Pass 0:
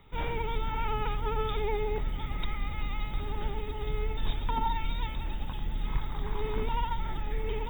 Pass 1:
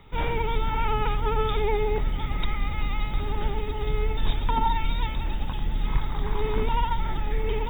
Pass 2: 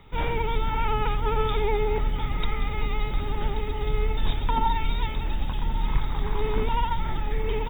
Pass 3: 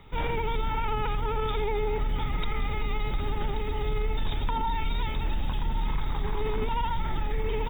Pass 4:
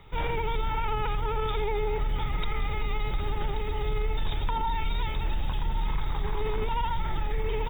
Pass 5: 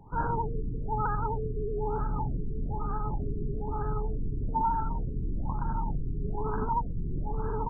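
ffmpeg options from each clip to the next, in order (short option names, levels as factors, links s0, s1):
-af "highshelf=f=8700:g=-6,volume=2"
-af "aecho=1:1:1129:0.211"
-af "alimiter=limit=0.1:level=0:latency=1:release=22"
-af "equalizer=f=240:t=o:w=0.46:g=-7.5"
-af "equalizer=f=125:t=o:w=1:g=6,equalizer=f=250:t=o:w=1:g=11,equalizer=f=500:t=o:w=1:g=-4,equalizer=f=1000:t=o:w=1:g=7,equalizer=f=2000:t=o:w=1:g=11,afftfilt=real='re*lt(b*sr/1024,450*pow(1700/450,0.5+0.5*sin(2*PI*1.1*pts/sr)))':imag='im*lt(b*sr/1024,450*pow(1700/450,0.5+0.5*sin(2*PI*1.1*pts/sr)))':win_size=1024:overlap=0.75,volume=0.596"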